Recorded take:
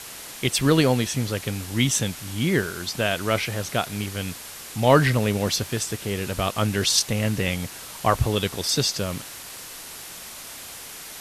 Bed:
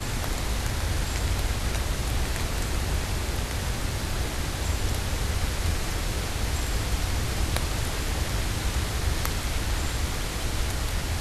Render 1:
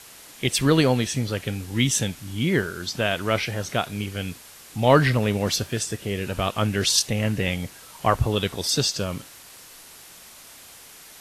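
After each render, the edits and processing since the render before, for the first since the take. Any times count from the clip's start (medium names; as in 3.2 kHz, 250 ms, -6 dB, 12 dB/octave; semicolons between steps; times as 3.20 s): noise print and reduce 7 dB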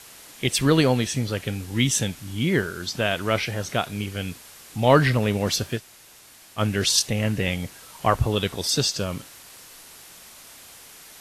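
5.78–6.58 s: room tone, crossfade 0.06 s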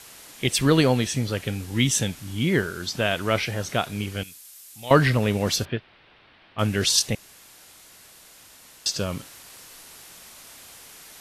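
4.23–4.91 s: pre-emphasis filter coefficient 0.9; 5.65–6.59 s: inverse Chebyshev low-pass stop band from 6.6 kHz; 7.15–8.86 s: room tone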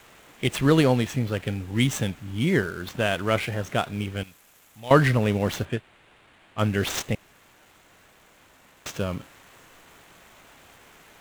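median filter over 9 samples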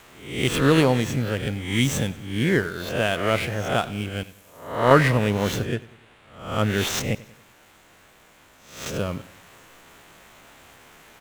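reverse spectral sustain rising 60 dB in 0.60 s; feedback delay 95 ms, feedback 48%, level -20 dB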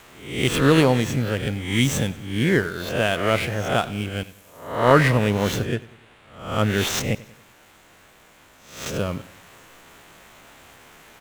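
trim +1.5 dB; peak limiter -3 dBFS, peak gain reduction 2.5 dB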